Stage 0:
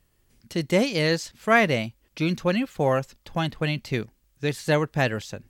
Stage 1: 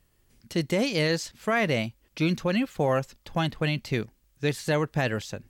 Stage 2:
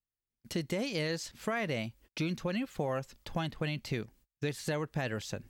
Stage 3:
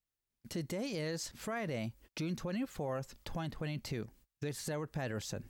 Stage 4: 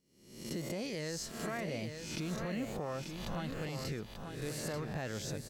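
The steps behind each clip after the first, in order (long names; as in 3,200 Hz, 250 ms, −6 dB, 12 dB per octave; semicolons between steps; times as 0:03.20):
brickwall limiter −15.5 dBFS, peak gain reduction 8 dB
noise gate −53 dBFS, range −33 dB; downward compressor 3 to 1, threshold −33 dBFS, peak gain reduction 10 dB
dynamic equaliser 2,900 Hz, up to −6 dB, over −53 dBFS, Q 0.96; brickwall limiter −31.5 dBFS, peak gain reduction 10.5 dB; level +2 dB
peak hold with a rise ahead of every peak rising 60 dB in 0.74 s; single-tap delay 888 ms −6.5 dB; level −2.5 dB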